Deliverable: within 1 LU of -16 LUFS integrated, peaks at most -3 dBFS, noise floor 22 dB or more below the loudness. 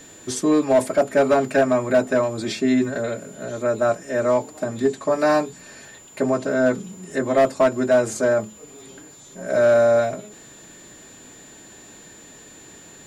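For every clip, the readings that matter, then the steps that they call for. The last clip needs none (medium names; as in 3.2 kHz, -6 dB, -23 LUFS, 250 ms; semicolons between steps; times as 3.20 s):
clipped samples 1.0%; clipping level -10.0 dBFS; steady tone 7.1 kHz; tone level -45 dBFS; loudness -20.5 LUFS; peak level -10.0 dBFS; loudness target -16.0 LUFS
-> clip repair -10 dBFS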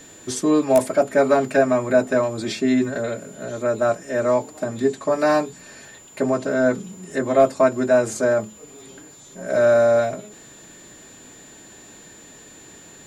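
clipped samples 0.0%; steady tone 7.1 kHz; tone level -45 dBFS
-> band-stop 7.1 kHz, Q 30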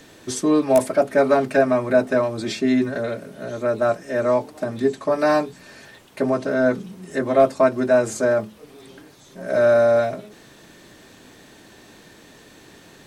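steady tone not found; loudness -20.0 LUFS; peak level -3.5 dBFS; loudness target -16.0 LUFS
-> trim +4 dB; peak limiter -3 dBFS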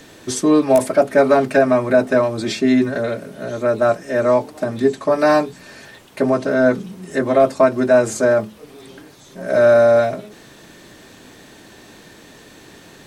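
loudness -16.5 LUFS; peak level -3.0 dBFS; noise floor -45 dBFS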